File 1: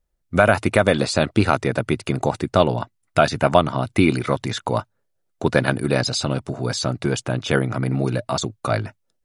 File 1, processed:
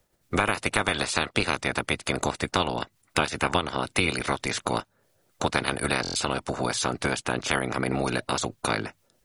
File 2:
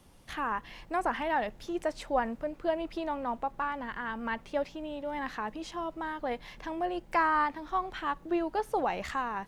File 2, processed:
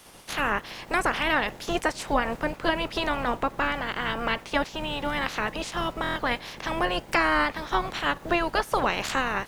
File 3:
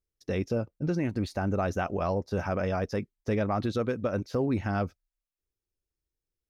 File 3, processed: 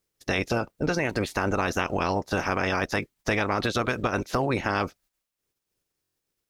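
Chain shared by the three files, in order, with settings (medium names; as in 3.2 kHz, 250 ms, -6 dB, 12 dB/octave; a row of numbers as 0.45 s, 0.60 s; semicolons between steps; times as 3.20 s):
spectral peaks clipped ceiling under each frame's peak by 20 dB; compression 2.5:1, threshold -28 dBFS; buffer glitch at 6.02 s, samples 1024, times 5; normalise loudness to -27 LUFS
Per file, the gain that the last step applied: +2.5 dB, +8.0 dB, +6.0 dB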